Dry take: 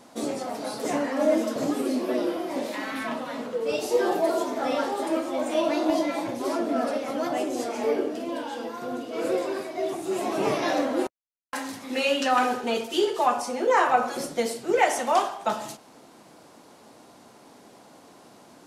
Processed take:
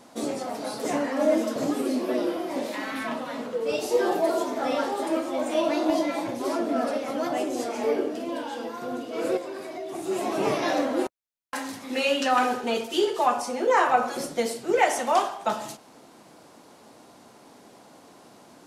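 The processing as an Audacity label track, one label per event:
9.370000	9.950000	compression 4:1, threshold -32 dBFS

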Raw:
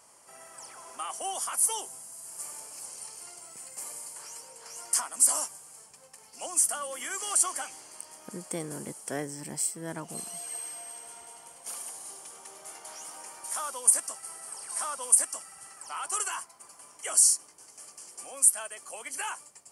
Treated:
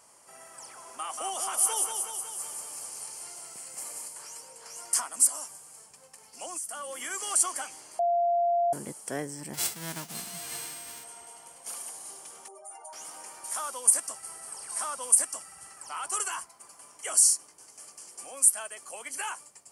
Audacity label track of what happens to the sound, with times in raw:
0.860000	4.080000	thinning echo 185 ms, feedback 64%, high-pass 210 Hz, level -4.5 dB
5.270000	6.990000	compression 4:1, threshold -34 dBFS
7.990000	8.730000	bleep 692 Hz -22 dBFS
9.530000	11.030000	formants flattened exponent 0.3
12.480000	12.930000	spectral contrast enhancement exponent 2.6
14.060000	16.500000	bass shelf 100 Hz +9.5 dB

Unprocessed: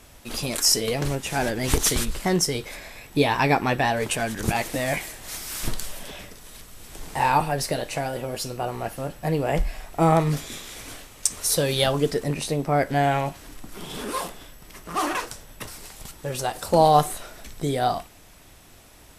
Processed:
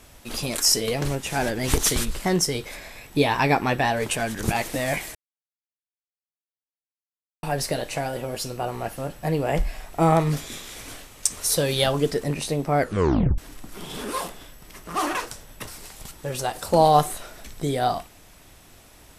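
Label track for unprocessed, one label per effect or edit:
5.150000	7.430000	mute
12.800000	12.800000	tape stop 0.58 s

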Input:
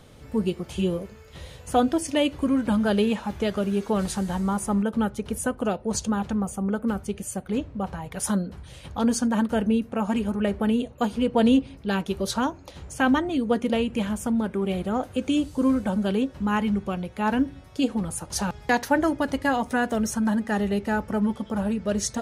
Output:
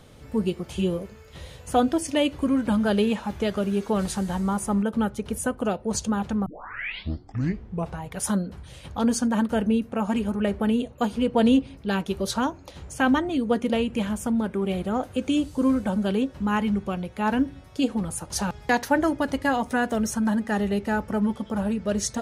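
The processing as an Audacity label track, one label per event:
6.460000	6.460000	tape start 1.56 s

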